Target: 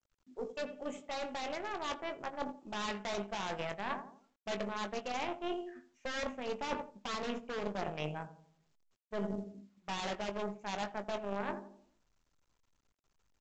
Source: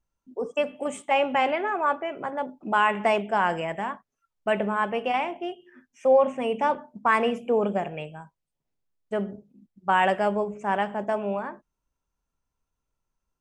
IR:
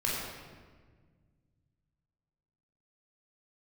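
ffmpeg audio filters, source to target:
-filter_complex "[0:a]aeval=exprs='0.106*(abs(mod(val(0)/0.106+3,4)-2)-1)':channel_layout=same,asplit=2[link_01][link_02];[link_02]adelay=85,lowpass=frequency=940:poles=1,volume=-10dB,asplit=2[link_03][link_04];[link_04]adelay=85,lowpass=frequency=940:poles=1,volume=0.5,asplit=2[link_05][link_06];[link_06]adelay=85,lowpass=frequency=940:poles=1,volume=0.5,asplit=2[link_07][link_08];[link_08]adelay=85,lowpass=frequency=940:poles=1,volume=0.5,asplit=2[link_09][link_10];[link_10]adelay=85,lowpass=frequency=940:poles=1,volume=0.5[link_11];[link_01][link_03][link_05][link_07][link_09][link_11]amix=inputs=6:normalize=0,dynaudnorm=framelen=290:gausssize=13:maxgain=9dB,aeval=exprs='0.422*(cos(1*acos(clip(val(0)/0.422,-1,1)))-cos(1*PI/2))+0.119*(cos(2*acos(clip(val(0)/0.422,-1,1)))-cos(2*PI/2))+0.0841*(cos(3*acos(clip(val(0)/0.422,-1,1)))-cos(3*PI/2))+0.00668*(cos(4*acos(clip(val(0)/0.422,-1,1)))-cos(4*PI/2))+0.0075*(cos(7*acos(clip(val(0)/0.422,-1,1)))-cos(7*PI/2))':channel_layout=same,areverse,acompressor=threshold=-35dB:ratio=8,areverse,asplit=2[link_12][link_13];[link_13]adelay=20,volume=-10dB[link_14];[link_12][link_14]amix=inputs=2:normalize=0" -ar 16000 -c:a pcm_mulaw

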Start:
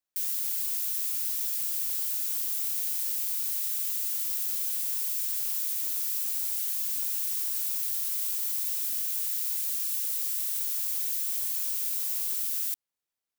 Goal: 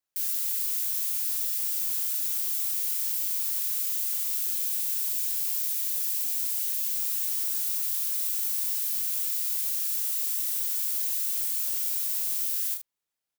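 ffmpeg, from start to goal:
ffmpeg -i in.wav -filter_complex "[0:a]asettb=1/sr,asplit=3[link_01][link_02][link_03];[link_01]atrim=end=4.614[link_04];[link_02]atrim=start=4.61:end=6.92,asetpts=PTS-STARTPTS,afade=type=in:duration=0.004:curve=qsin,afade=type=out:start_time=2.306:duration=0.004:curve=qsin,equalizer=frequency=1300:width=6.3:gain=-9.5[link_05];[link_03]atrim=start=6.916[link_06];[link_04][link_05]acrossfade=duration=0.004:curve1=hsin:curve2=qsin[link_07];[link_07][link_06]acrossfade=duration=0.004:curve1=qsin:curve2=hsin,aecho=1:1:33|75:0.596|0.316" out.wav

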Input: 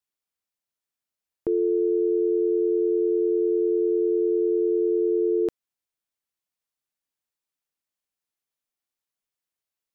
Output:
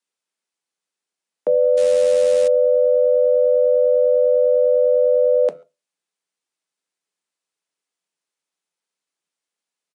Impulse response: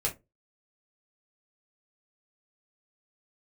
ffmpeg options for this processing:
-filter_complex "[0:a]asplit=2[link_01][link_02];[link_02]adelay=140,highpass=300,lowpass=3400,asoftclip=type=hard:threshold=-24dB,volume=-27dB[link_03];[link_01][link_03]amix=inputs=2:normalize=0,afreqshift=150,asplit=2[link_04][link_05];[1:a]atrim=start_sample=2205[link_06];[link_05][link_06]afir=irnorm=-1:irlink=0,volume=-14dB[link_07];[link_04][link_07]amix=inputs=2:normalize=0,asettb=1/sr,asplit=3[link_08][link_09][link_10];[link_08]atrim=end=1.774[link_11];[link_09]atrim=start=1.77:end=2.48,asetpts=PTS-STARTPTS,afade=type=in:duration=0.004:curve=qsin,afade=type=out:start_time=0.706:duration=0.004:curve=qsin,acrusher=bits=4:mode=log:mix=0:aa=0.000001[link_12];[link_10]atrim=start=2.476[link_13];[link_11][link_12]acrossfade=duration=0.004:curve1=hsin:curve2=qsin[link_14];[link_14][link_13]acrossfade=duration=0.004:curve1=qsin:curve2=hsin,aresample=22050,aresample=44100,volume=4dB"

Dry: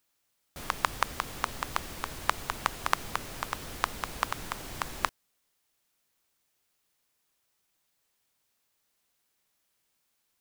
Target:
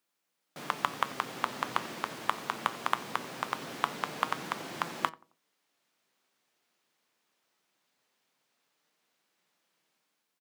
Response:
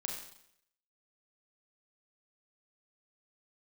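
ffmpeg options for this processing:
-filter_complex "[0:a]highpass=frequency=160:width=0.5412,highpass=frequency=160:width=1.3066,highshelf=frequency=3800:gain=-6,acrossover=split=6900[link_01][link_02];[link_01]dynaudnorm=framelen=190:gausssize=5:maxgain=7dB[link_03];[link_03][link_02]amix=inputs=2:normalize=0,asoftclip=type=tanh:threshold=-7.5dB,flanger=delay=5.7:depth=3.5:regen=82:speed=0.21:shape=triangular,asplit=2[link_04][link_05];[link_05]adelay=89,lowpass=frequency=920:poles=1,volume=-18.5dB,asplit=2[link_06][link_07];[link_07]adelay=89,lowpass=frequency=920:poles=1,volume=0.4,asplit=2[link_08][link_09];[link_09]adelay=89,lowpass=frequency=920:poles=1,volume=0.4[link_10];[link_06][link_08][link_10]amix=inputs=3:normalize=0[link_11];[link_04][link_11]amix=inputs=2:normalize=0,volume=2.5dB"

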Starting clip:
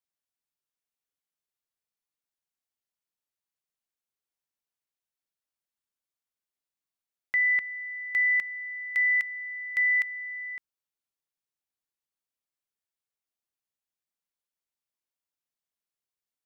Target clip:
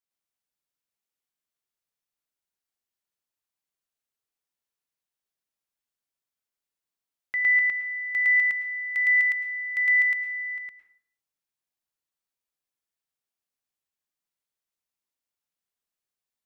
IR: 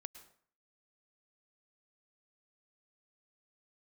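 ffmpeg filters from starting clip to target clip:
-filter_complex "[0:a]asplit=2[link_01][link_02];[1:a]atrim=start_sample=2205,adelay=110[link_03];[link_02][link_03]afir=irnorm=-1:irlink=0,volume=6.5dB[link_04];[link_01][link_04]amix=inputs=2:normalize=0,volume=-2.5dB"

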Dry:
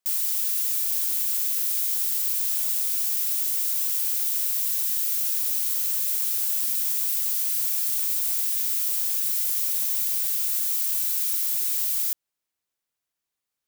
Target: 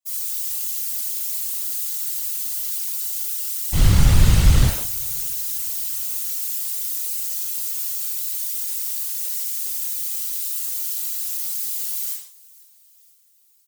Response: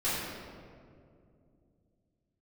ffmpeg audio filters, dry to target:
-filter_complex "[0:a]acrossover=split=190|550|4400[link_01][link_02][link_03][link_04];[link_04]acontrast=57[link_05];[link_01][link_02][link_03][link_05]amix=inputs=4:normalize=0,asettb=1/sr,asplit=3[link_06][link_07][link_08];[link_06]atrim=end=3.724[link_09];[link_07]atrim=start=3.72:end=4.68,asetpts=PTS-STARTPTS,afade=type=in:duration=0.004:curve=qsin,afade=type=out:start_time=0.956:duration=0.004:curve=qsin,aeval=exprs='abs(val(0))':channel_layout=same[link_10];[link_08]atrim=start=4.676[link_11];[link_09][link_10]acrossfade=duration=0.004:curve1=hsin:curve2=qsin[link_12];[link_12][link_11]acrossfade=duration=0.004:curve1=qsin:curve2=hsin,asplit=5[link_13][link_14][link_15][link_16][link_17];[link_14]adelay=491,afreqshift=34,volume=-24dB[link_18];[link_15]adelay=982,afreqshift=68,volume=-28.7dB[link_19];[link_16]adelay=1473,afreqshift=102,volume=-33.5dB[link_20];[link_17]adelay=1964,afreqshift=136,volume=-38.2dB[link_21];[link_13][link_18][link_19][link_20][link_21]amix=inputs=5:normalize=0[link_22];[1:a]atrim=start_sample=2205,afade=type=out:start_time=0.38:duration=0.01,atrim=end_sample=17199,asetrate=74970,aresample=44100[link_23];[link_22][link_23]afir=irnorm=-1:irlink=0,afftfilt=real='hypot(re,im)*cos(2*PI*random(0))':imag='hypot(re,im)*sin(2*PI*random(1))':win_size=512:overlap=0.75,volume=-1dB"

